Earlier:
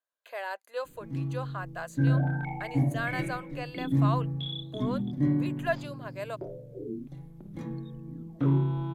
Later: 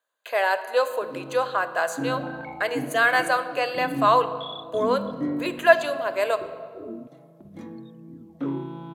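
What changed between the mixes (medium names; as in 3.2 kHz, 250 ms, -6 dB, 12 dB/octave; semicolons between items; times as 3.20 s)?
speech +12.0 dB; first sound: add high-pass 210 Hz 24 dB/octave; reverb: on, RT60 2.2 s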